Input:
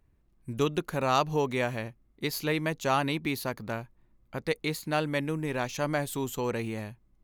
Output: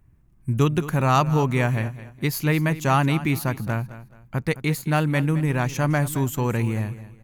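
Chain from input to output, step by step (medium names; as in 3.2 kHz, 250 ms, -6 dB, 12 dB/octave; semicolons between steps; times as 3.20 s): ten-band graphic EQ 125 Hz +8 dB, 500 Hz -6 dB, 4 kHz -8 dB; feedback delay 215 ms, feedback 30%, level -15 dB; trim +7.5 dB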